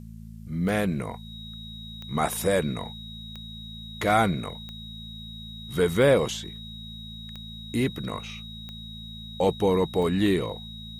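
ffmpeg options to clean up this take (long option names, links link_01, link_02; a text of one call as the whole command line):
ffmpeg -i in.wav -af "adeclick=threshold=4,bandreject=frequency=55.2:width_type=h:width=4,bandreject=frequency=110.4:width_type=h:width=4,bandreject=frequency=165.6:width_type=h:width=4,bandreject=frequency=220.8:width_type=h:width=4,bandreject=frequency=3800:width=30,agate=range=-21dB:threshold=-32dB" out.wav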